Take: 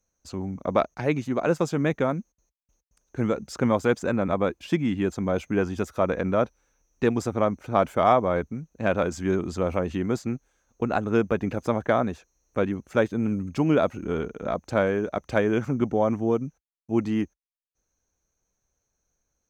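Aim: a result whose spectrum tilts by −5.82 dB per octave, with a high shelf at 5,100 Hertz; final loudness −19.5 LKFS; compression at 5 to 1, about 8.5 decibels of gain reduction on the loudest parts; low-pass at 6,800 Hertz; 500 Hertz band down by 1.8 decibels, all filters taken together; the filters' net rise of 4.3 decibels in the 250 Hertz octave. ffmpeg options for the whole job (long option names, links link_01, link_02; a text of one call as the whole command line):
ffmpeg -i in.wav -af "lowpass=6800,equalizer=frequency=250:width_type=o:gain=6.5,equalizer=frequency=500:width_type=o:gain=-4,highshelf=frequency=5100:gain=-7,acompressor=threshold=-24dB:ratio=5,volume=10.5dB" out.wav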